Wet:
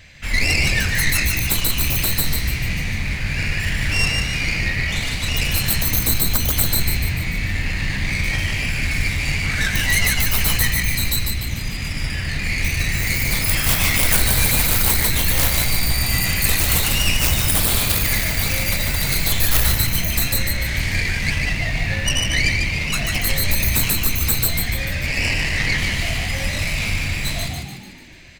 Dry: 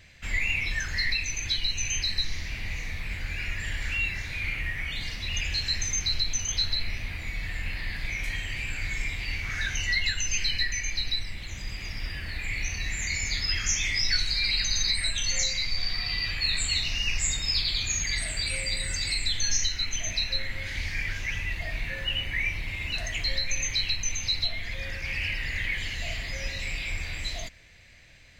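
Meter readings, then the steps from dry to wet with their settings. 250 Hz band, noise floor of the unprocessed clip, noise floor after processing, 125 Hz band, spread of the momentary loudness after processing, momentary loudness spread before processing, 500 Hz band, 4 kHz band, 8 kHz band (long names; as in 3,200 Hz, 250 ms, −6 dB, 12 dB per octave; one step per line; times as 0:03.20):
+18.5 dB, −37 dBFS, −26 dBFS, +15.0 dB, 7 LU, 9 LU, +14.5 dB, +4.5 dB, +8.0 dB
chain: stylus tracing distortion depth 0.47 ms
notch filter 370 Hz, Q 12
echo with shifted repeats 147 ms, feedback 48%, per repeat +56 Hz, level −4 dB
level +8 dB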